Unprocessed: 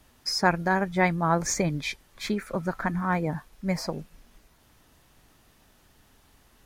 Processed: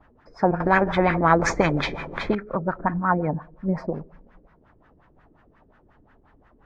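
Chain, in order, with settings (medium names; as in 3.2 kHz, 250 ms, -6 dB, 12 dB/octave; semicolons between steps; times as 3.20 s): two-slope reverb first 0.55 s, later 3.3 s, from -21 dB, DRR 16 dB; LFO low-pass sine 5.6 Hz 350–1700 Hz; 0.60–2.35 s: spectrum-flattening compressor 2:1; trim +2 dB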